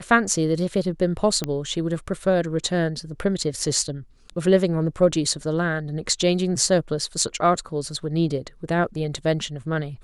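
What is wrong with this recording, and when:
1.44 pop -11 dBFS

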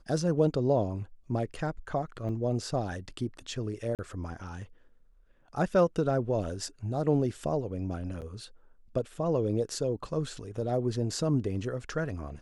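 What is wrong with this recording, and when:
2.29 gap 4.2 ms
3.95–3.99 gap 38 ms
8.21–8.22 gap 8.4 ms

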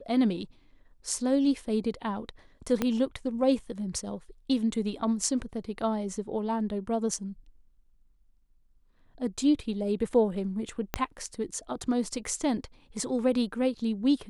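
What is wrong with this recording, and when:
2.82 pop -13 dBFS
10.94 pop -11 dBFS

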